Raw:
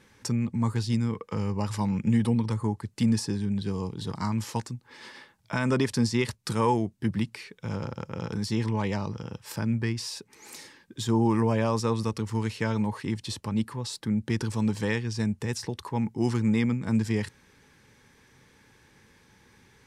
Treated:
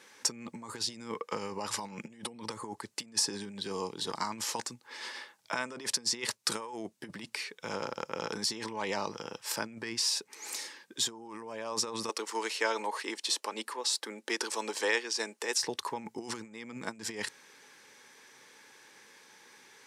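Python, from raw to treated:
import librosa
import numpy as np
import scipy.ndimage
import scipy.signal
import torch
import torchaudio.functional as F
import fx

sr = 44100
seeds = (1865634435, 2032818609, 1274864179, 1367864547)

y = fx.highpass(x, sr, hz=320.0, slope=24, at=(12.09, 15.62))
y = fx.over_compress(y, sr, threshold_db=-29.0, ratio=-0.5)
y = scipy.signal.sosfilt(scipy.signal.butter(2, 440.0, 'highpass', fs=sr, output='sos'), y)
y = fx.peak_eq(y, sr, hz=6500.0, db=4.0, octaves=1.5)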